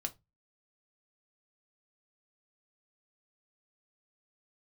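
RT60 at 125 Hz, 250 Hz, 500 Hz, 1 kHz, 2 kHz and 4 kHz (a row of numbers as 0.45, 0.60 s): 0.40, 0.30, 0.20, 0.20, 0.15, 0.15 s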